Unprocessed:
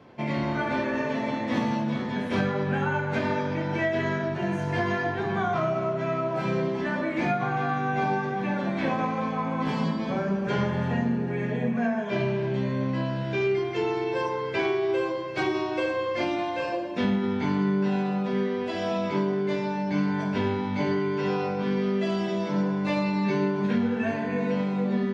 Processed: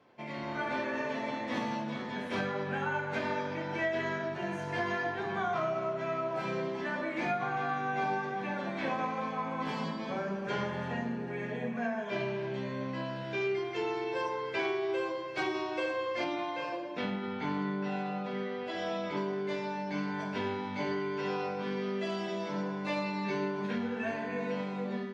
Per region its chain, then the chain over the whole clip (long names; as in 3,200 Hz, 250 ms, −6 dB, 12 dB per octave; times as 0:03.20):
0:16.24–0:19.17: high-frequency loss of the air 67 metres + comb filter 6.6 ms, depth 42%
whole clip: low-shelf EQ 250 Hz −11 dB; automatic gain control gain up to 5 dB; level −9 dB